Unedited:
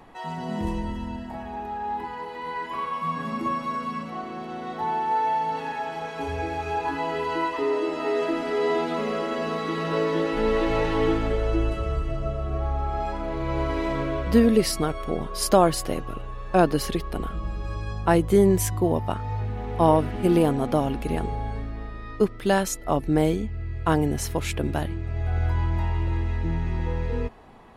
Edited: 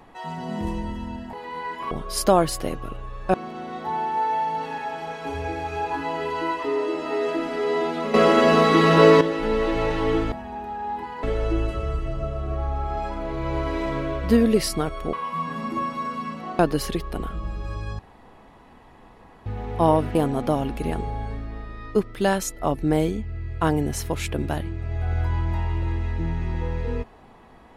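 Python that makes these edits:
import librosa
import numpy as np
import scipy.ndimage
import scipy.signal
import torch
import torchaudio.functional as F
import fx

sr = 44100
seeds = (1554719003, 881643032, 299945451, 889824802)

y = fx.edit(x, sr, fx.move(start_s=1.33, length_s=0.91, to_s=11.26),
    fx.swap(start_s=2.82, length_s=1.46, other_s=15.16, other_length_s=1.43),
    fx.clip_gain(start_s=9.08, length_s=1.07, db=11.5),
    fx.room_tone_fill(start_s=17.99, length_s=1.47),
    fx.cut(start_s=20.15, length_s=0.25), tone=tone)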